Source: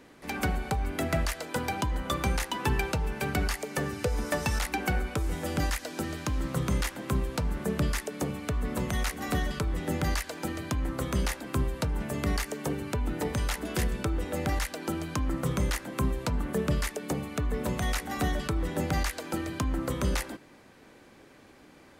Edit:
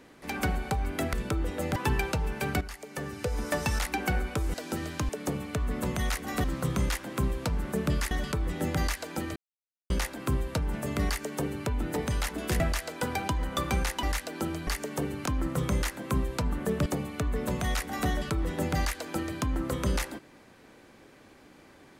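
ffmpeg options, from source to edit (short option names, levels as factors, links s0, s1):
-filter_complex "[0:a]asplit=15[s0][s1][s2][s3][s4][s5][s6][s7][s8][s9][s10][s11][s12][s13][s14];[s0]atrim=end=1.132[s15];[s1]atrim=start=13.868:end=14.502[s16];[s2]atrim=start=2.558:end=3.41,asetpts=PTS-STARTPTS,afade=t=out:st=0.848:d=0.004:c=hsin:silence=0.211349[s17];[s3]atrim=start=3.41:end=5.342,asetpts=PTS-STARTPTS,afade=t=in:d=0.94:silence=0.211349[s18];[s4]atrim=start=5.808:end=6.362[s19];[s5]atrim=start=8.028:end=9.382[s20];[s6]atrim=start=6.358:end=8.032[s21];[s7]atrim=start=9.378:end=10.63,asetpts=PTS-STARTPTS,afade=t=out:st=1.248:d=0.004:c=hsin[s22];[s8]atrim=start=10.63:end=11.17,asetpts=PTS-STARTPTS,volume=0[s23];[s9]atrim=start=11.17:end=13.872,asetpts=PTS-STARTPTS,afade=t=in:d=0.004:c=hsin[s24];[s10]atrim=start=1.128:end=2.562[s25];[s11]atrim=start=14.498:end=15.142[s26];[s12]atrim=start=12.348:end=12.942[s27];[s13]atrim=start=15.138:end=16.742[s28];[s14]atrim=start=17.038[s29];[s15][s16]acrossfade=d=0.004:c1=hsin:c2=hsin[s30];[s17][s18]concat=n=2:v=0:a=1[s31];[s30][s31]acrossfade=d=0.004:c1=hsin:c2=hsin[s32];[s32][s19]acrossfade=d=0.004:c1=hsin:c2=hsin[s33];[s33][s20]acrossfade=d=0.004:c1=hsin:c2=hsin[s34];[s34][s21]acrossfade=d=0.004:c1=hsin:c2=hsin[s35];[s22][s23][s24]concat=n=3:v=0:a=1[s36];[s35][s36]acrossfade=d=0.004:c1=hsin:c2=hsin[s37];[s37][s25]acrossfade=d=0.004:c1=hsin:c2=hsin[s38];[s38][s26]acrossfade=d=0.004:c1=hsin:c2=hsin[s39];[s39][s27]acrossfade=d=0.004:c1=hsin:c2=hsin[s40];[s40][s28]acrossfade=d=0.004:c1=hsin:c2=hsin[s41];[s41][s29]acrossfade=d=0.004:c1=hsin:c2=hsin"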